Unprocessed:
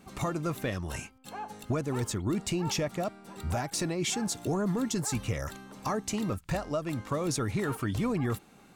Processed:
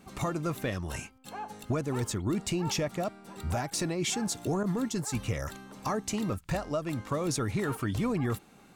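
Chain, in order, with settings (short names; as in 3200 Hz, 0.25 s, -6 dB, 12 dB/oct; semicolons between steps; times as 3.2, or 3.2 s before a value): 4.63–5.14 expander -28 dBFS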